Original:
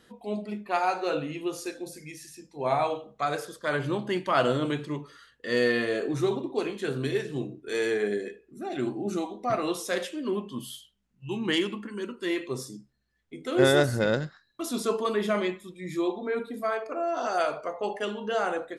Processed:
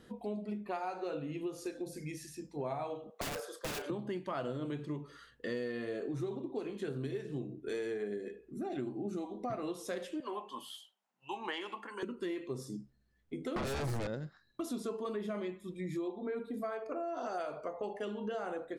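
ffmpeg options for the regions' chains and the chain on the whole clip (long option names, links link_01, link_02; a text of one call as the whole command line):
ffmpeg -i in.wav -filter_complex "[0:a]asettb=1/sr,asplit=3[link_01][link_02][link_03];[link_01]atrim=end=3.104[link_04];[link_02]atrim=start=3.1:end=3.9,asetpts=PTS-STARTPTS,afade=type=in:duration=0.004:curve=qsin,afade=type=out:start_time=0.796:duration=0.004:curve=qsin,highpass=frequency=450:width=0.5412,highpass=frequency=450:width=1.3066,aeval=exprs='(mod(21.1*val(0)+1,2)-1)/21.1':channel_layout=same,asplit=2[link_05][link_06];[link_06]adelay=33,volume=-12dB[link_07];[link_05][link_07]amix=inputs=2:normalize=0,atrim=end_sample=35280[link_08];[link_03]atrim=start=3.896[link_09];[link_04][link_08]acrossfade=duration=0.004:curve1=hsin:curve2=qsin[link_10];[link_10][link_09]acrossfade=duration=0.004:curve1=qsin:curve2=hsin,asettb=1/sr,asplit=3[link_11][link_12][link_13];[link_11]atrim=end=10.204[link_14];[link_12]atrim=start=10.2:end=12.03,asetpts=PTS-STARTPTS,afade=type=in:duration=0.004:curve=qsin,afade=type=out:start_time=1.826:duration=0.004:curve=qsin,highpass=frequency=800:width_type=q:width=2.8,acrossover=split=4400[link_15][link_16];[link_16]acompressor=threshold=-49dB:ratio=4:attack=1:release=60[link_17];[link_15][link_17]amix=inputs=2:normalize=0[link_18];[link_13]atrim=start=12.026[link_19];[link_14][link_18]acrossfade=duration=0.004:curve1=hsin:curve2=qsin[link_20];[link_20][link_19]acrossfade=duration=0.004:curve1=qsin:curve2=hsin,asettb=1/sr,asplit=3[link_21][link_22][link_23];[link_21]atrim=end=13.564[link_24];[link_22]atrim=start=13.56:end=14.07,asetpts=PTS-STARTPTS,afade=type=in:duration=0.004:curve=qsin,afade=type=out:start_time=0.506:duration=0.004:curve=qsin,acompressor=threshold=-23dB:ratio=16:attack=3.2:release=140:knee=1:detection=peak,aeval=exprs='0.141*sin(PI/2*4.47*val(0)/0.141)':channel_layout=same[link_25];[link_23]atrim=start=14.066[link_26];[link_24][link_25]acrossfade=duration=0.004:curve1=hsin:curve2=qsin[link_27];[link_27][link_26]acrossfade=duration=0.004:curve1=qsin:curve2=hsin,tiltshelf=frequency=740:gain=4.5,acompressor=threshold=-36dB:ratio=6" out.wav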